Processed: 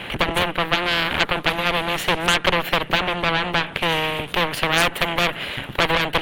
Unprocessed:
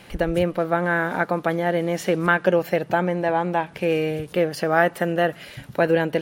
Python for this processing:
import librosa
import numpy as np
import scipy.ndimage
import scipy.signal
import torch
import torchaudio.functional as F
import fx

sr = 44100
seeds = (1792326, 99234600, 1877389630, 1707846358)

y = fx.cheby_harmonics(x, sr, harmonics=(8,), levels_db=(-10,), full_scale_db=-3.0)
y = fx.high_shelf_res(y, sr, hz=4000.0, db=-10.0, q=3.0)
y = fx.spectral_comp(y, sr, ratio=2.0)